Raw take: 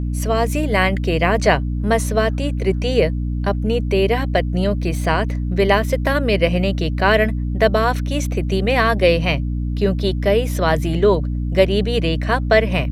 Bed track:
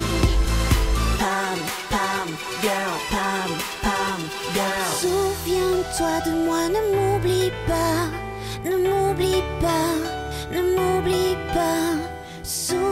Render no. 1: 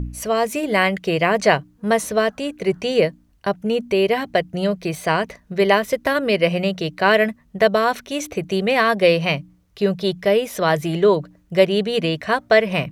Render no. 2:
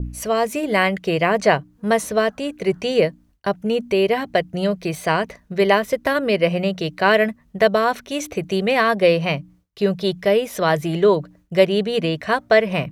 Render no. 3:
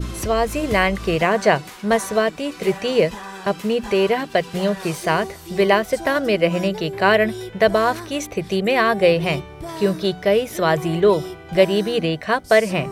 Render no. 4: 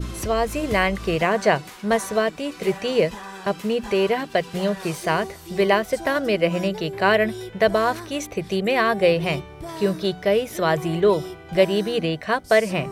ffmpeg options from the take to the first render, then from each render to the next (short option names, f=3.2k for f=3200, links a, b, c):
-af "bandreject=f=60:t=h:w=4,bandreject=f=120:t=h:w=4,bandreject=f=180:t=h:w=4,bandreject=f=240:t=h:w=4,bandreject=f=300:t=h:w=4"
-af "agate=range=-33dB:threshold=-45dB:ratio=3:detection=peak,adynamicequalizer=threshold=0.0355:dfrequency=1800:dqfactor=0.7:tfrequency=1800:tqfactor=0.7:attack=5:release=100:ratio=0.375:range=2.5:mode=cutabove:tftype=highshelf"
-filter_complex "[1:a]volume=-11dB[a];[0:a][a]amix=inputs=2:normalize=0"
-af "volume=-2.5dB"